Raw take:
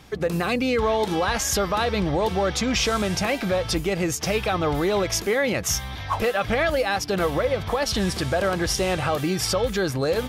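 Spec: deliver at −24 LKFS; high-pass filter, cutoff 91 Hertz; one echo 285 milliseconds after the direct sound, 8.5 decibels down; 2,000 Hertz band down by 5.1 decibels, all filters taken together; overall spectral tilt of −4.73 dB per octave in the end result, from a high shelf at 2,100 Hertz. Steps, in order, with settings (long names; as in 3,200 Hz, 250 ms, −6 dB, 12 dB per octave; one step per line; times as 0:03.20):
high-pass filter 91 Hz
parametric band 2,000 Hz −4 dB
high-shelf EQ 2,100 Hz −4.5 dB
single-tap delay 285 ms −8.5 dB
level +0.5 dB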